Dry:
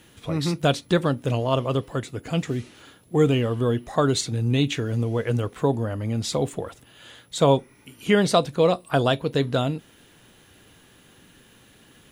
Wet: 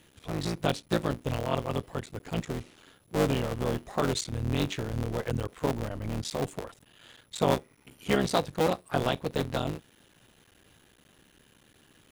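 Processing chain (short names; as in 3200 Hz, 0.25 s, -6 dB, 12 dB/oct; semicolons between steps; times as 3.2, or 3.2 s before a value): cycle switcher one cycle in 3, muted; gain -5.5 dB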